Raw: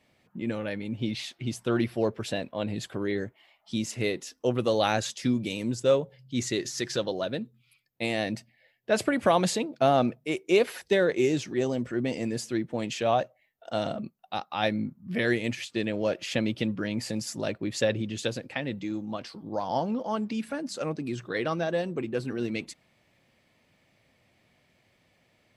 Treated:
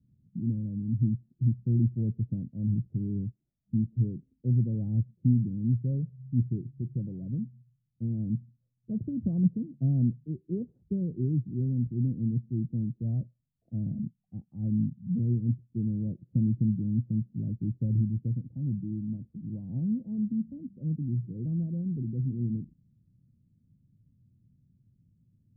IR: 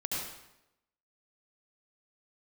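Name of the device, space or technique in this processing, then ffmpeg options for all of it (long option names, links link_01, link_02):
the neighbour's flat through the wall: -af "lowpass=frequency=200:width=0.5412,lowpass=frequency=200:width=1.3066,equalizer=frequency=120:width_type=o:width=0.61:gain=4,volume=6.5dB"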